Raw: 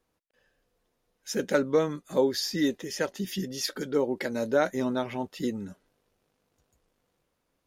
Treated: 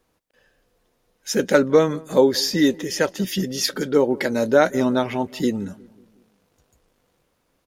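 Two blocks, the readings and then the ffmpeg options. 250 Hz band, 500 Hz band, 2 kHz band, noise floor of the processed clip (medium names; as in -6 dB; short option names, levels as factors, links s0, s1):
+8.5 dB, +8.5 dB, +8.5 dB, -70 dBFS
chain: -filter_complex "[0:a]asplit=2[s0][s1];[s1]adelay=182,lowpass=f=1300:p=1,volume=0.0841,asplit=2[s2][s3];[s3]adelay=182,lowpass=f=1300:p=1,volume=0.53,asplit=2[s4][s5];[s5]adelay=182,lowpass=f=1300:p=1,volume=0.53,asplit=2[s6][s7];[s7]adelay=182,lowpass=f=1300:p=1,volume=0.53[s8];[s0][s2][s4][s6][s8]amix=inputs=5:normalize=0,volume=2.66"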